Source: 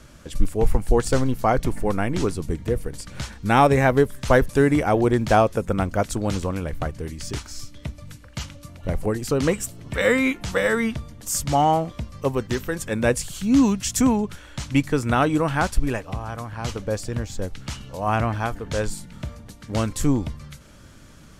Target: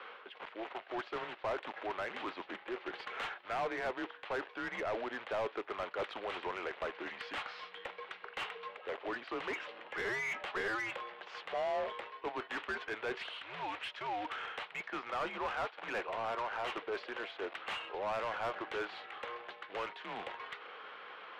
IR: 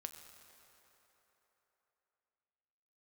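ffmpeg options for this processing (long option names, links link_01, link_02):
-filter_complex "[0:a]areverse,acompressor=threshold=-28dB:ratio=20,areverse,acrusher=bits=4:mode=log:mix=0:aa=0.000001,highpass=frequency=550:width_type=q:width=0.5412,highpass=frequency=550:width_type=q:width=1.307,lowpass=frequency=3500:width_type=q:width=0.5176,lowpass=frequency=3500:width_type=q:width=0.7071,lowpass=frequency=3500:width_type=q:width=1.932,afreqshift=-110,asplit=2[link_01][link_02];[link_02]highpass=frequency=720:poles=1,volume=21dB,asoftclip=type=tanh:threshold=-22.5dB[link_03];[link_01][link_03]amix=inputs=2:normalize=0,lowpass=frequency=2300:poles=1,volume=-6dB,volume=-5.5dB"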